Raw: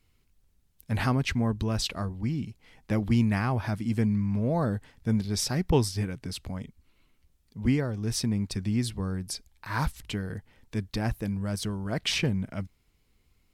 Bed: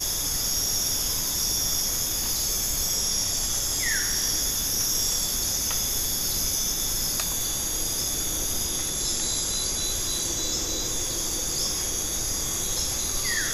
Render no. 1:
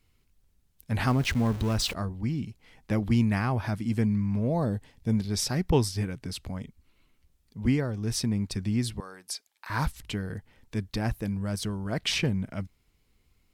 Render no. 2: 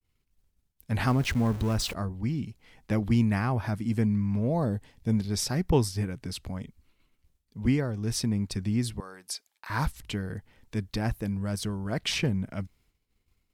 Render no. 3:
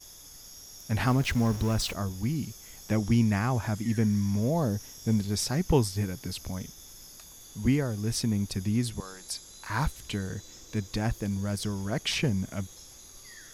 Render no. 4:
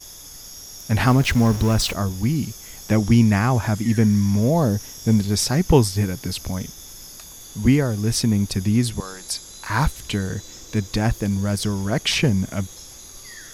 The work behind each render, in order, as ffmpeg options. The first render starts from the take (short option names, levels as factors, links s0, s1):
-filter_complex "[0:a]asettb=1/sr,asplit=3[s0][s1][s2];[s0]atrim=end=1.074[s3];[s1]atrim=start=1.07:end=1.94,asetpts=PTS-STARTPTS,afade=t=in:d=0.004:c=qsin,afade=t=out:st=0.866:d=0.004:c=qsin,aeval=exprs='val(0)+0.5*0.02*sgn(val(0))':c=same[s4];[s2]atrim=start=1.936[s5];[s3][s4]acrossfade=d=0.004:c1=hsin:c2=qsin[s6];[s6][s5]acrossfade=d=0.004:c1=qsin:c2=hsin,asettb=1/sr,asplit=3[s7][s8][s9];[s7]atrim=end=4.474[s10];[s8]atrim=start=4.47:end=5.13,asetpts=PTS-STARTPTS,afade=t=in:d=0.004:c=qsin,afade=t=out:st=0.656:d=0.004:c=qsin,equalizer=f=1400:w=2.3:g=-8.5[s11];[s9]atrim=start=5.126[s12];[s10][s11]acrossfade=d=0.004:c1=hsin:c2=qsin[s13];[s13][s12]acrossfade=d=0.004:c1=qsin:c2=hsin,asettb=1/sr,asplit=3[s14][s15][s16];[s14]atrim=end=9.004[s17];[s15]atrim=start=9:end=9.7,asetpts=PTS-STARTPTS,afade=t=in:d=0.004:c=qsin,afade=t=out:st=0.696:d=0.004:c=qsin,highpass=660[s18];[s16]atrim=start=9.696[s19];[s17][s18]acrossfade=d=0.004:c1=hsin:c2=qsin[s20];[s20][s19]acrossfade=d=0.004:c1=qsin:c2=hsin"
-af "adynamicequalizer=threshold=0.00398:dfrequency=3500:dqfactor=0.78:tfrequency=3500:tqfactor=0.78:attack=5:release=100:ratio=0.375:range=2:mode=cutabove:tftype=bell,agate=range=0.0224:threshold=0.00112:ratio=3:detection=peak"
-filter_complex "[1:a]volume=0.0794[s0];[0:a][s0]amix=inputs=2:normalize=0"
-af "volume=2.66"